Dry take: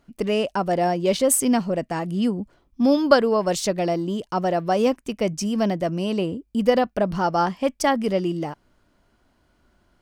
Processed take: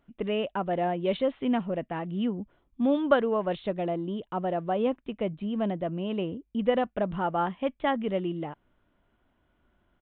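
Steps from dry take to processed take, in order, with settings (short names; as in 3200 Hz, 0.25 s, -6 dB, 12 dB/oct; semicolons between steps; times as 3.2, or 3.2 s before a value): 3.59–6.1 dynamic EQ 2200 Hz, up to -4 dB, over -40 dBFS, Q 0.9; downsampling 8000 Hz; gain -6.5 dB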